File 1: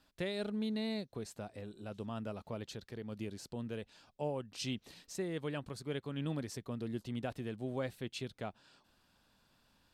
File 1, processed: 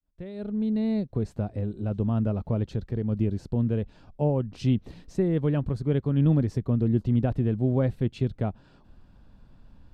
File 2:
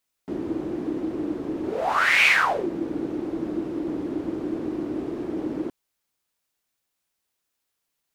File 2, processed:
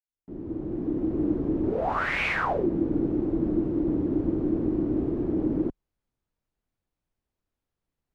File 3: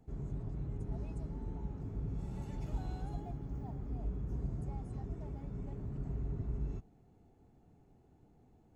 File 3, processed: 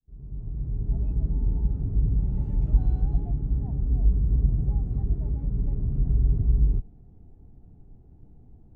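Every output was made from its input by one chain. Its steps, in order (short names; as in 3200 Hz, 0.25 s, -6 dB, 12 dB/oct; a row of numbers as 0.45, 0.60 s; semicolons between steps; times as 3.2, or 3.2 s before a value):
opening faded in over 1.28 s; tilt -4.5 dB/oct; match loudness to -27 LUFS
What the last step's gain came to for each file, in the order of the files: +6.0, -4.5, -1.5 dB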